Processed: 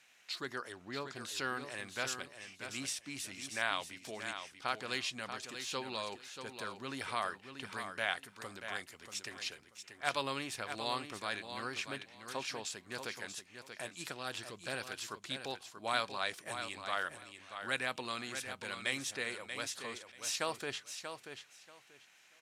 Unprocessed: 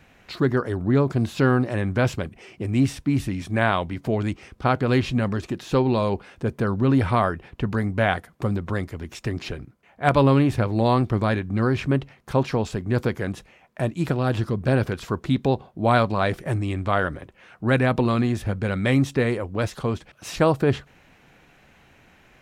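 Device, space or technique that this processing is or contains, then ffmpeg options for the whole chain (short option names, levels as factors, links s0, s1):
piezo pickup straight into a mixer: -filter_complex "[0:a]asettb=1/sr,asplit=3[s0][s1][s2];[s0]atrim=end=0.724[s3];[s1]atrim=start=0.72:end=1.16,asetpts=PTS-STARTPTS,afade=t=in:d=0.004:c=qsin,afade=t=out:st=0.436:d=0.004:c=qsin,lowpass=5700[s4];[s2]atrim=start=1.156[s5];[s3][s4]acrossfade=d=0.004:c1=hsin:c2=qsin[s6];[s6][s5]acrossfade=d=0.004:c1=qsin:c2=hsin,lowpass=8700,aderivative,aecho=1:1:635|1270|1905:0.376|0.0714|0.0136,volume=1.33"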